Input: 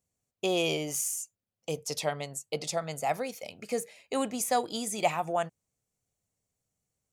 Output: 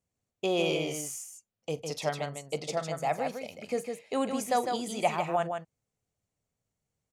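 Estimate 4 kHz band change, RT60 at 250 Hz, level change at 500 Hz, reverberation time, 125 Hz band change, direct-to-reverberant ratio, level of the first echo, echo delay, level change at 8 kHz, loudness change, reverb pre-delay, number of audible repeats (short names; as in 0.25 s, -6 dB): -2.0 dB, none, +1.0 dB, none, +1.5 dB, none, -18.0 dB, 41 ms, -6.0 dB, -0.5 dB, none, 2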